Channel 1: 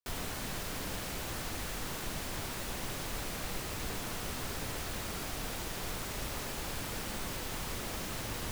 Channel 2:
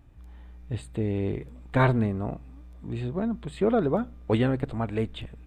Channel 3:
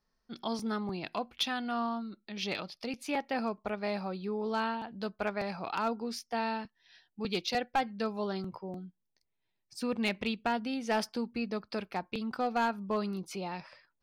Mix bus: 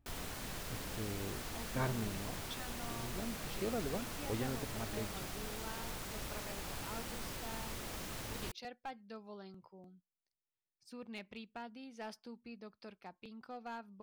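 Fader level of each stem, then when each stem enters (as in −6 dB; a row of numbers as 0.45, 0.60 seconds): −5.5, −15.5, −16.0 decibels; 0.00, 0.00, 1.10 seconds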